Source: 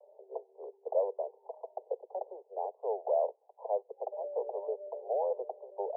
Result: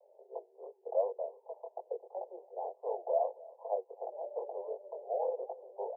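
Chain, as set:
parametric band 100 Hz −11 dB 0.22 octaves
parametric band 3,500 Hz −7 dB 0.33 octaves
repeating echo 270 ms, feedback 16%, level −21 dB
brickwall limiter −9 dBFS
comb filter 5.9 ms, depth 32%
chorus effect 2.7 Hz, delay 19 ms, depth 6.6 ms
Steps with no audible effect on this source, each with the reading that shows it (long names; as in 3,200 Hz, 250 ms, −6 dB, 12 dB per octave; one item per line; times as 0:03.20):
parametric band 100 Hz: nothing at its input below 340 Hz
parametric band 3,500 Hz: nothing at its input above 1,000 Hz
brickwall limiter −9 dBFS: peak of its input −18.0 dBFS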